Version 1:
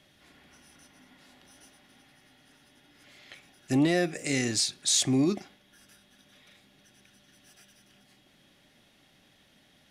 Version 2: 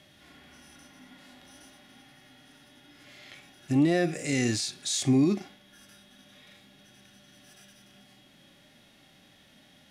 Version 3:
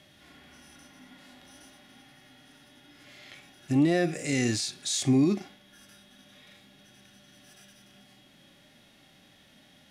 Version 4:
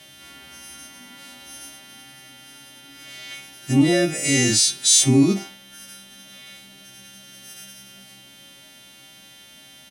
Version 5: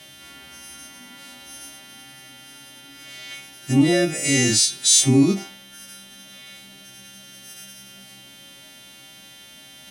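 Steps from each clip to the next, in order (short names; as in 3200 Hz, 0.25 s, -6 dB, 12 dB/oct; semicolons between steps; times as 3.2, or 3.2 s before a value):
limiter -22.5 dBFS, peak gain reduction 8.5 dB; harmonic-percussive split percussive -13 dB; gain +7.5 dB
nothing audible
frequency quantiser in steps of 2 st; doubler 15 ms -11 dB; gain +6.5 dB
reverse; upward compressor, threshold -40 dBFS; reverse; ending taper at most 200 dB/s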